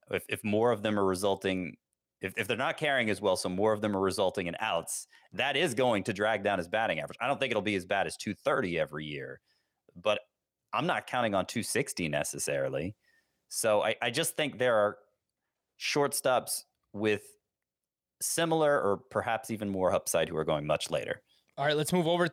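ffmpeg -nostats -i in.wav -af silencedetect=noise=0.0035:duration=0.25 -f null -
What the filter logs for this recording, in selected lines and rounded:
silence_start: 1.74
silence_end: 2.22 | silence_duration: 0.48
silence_start: 9.36
silence_end: 9.89 | silence_duration: 0.53
silence_start: 10.22
silence_end: 10.73 | silence_duration: 0.51
silence_start: 12.92
silence_end: 13.51 | silence_duration: 0.59
silence_start: 14.98
silence_end: 15.79 | silence_duration: 0.81
silence_start: 16.62
silence_end: 16.94 | silence_duration: 0.32
silence_start: 17.31
silence_end: 18.21 | silence_duration: 0.90
silence_start: 21.17
silence_end: 21.58 | silence_duration: 0.40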